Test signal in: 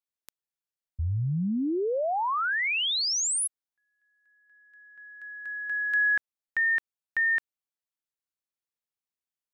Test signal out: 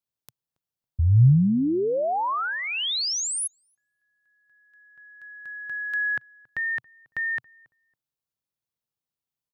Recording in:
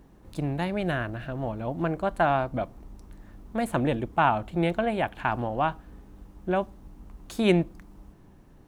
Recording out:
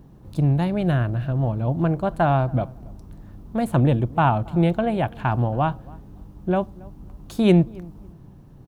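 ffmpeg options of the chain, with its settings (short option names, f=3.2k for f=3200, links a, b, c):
-filter_complex "[0:a]equalizer=f=125:t=o:w=1:g=11,equalizer=f=2k:t=o:w=1:g=-6,equalizer=f=8k:t=o:w=1:g=-4,asplit=2[a][b];[b]adelay=277,lowpass=f=1.3k:p=1,volume=-23dB,asplit=2[c][d];[d]adelay=277,lowpass=f=1.3k:p=1,volume=0.23[e];[c][e]amix=inputs=2:normalize=0[f];[a][f]amix=inputs=2:normalize=0,volume=3dB"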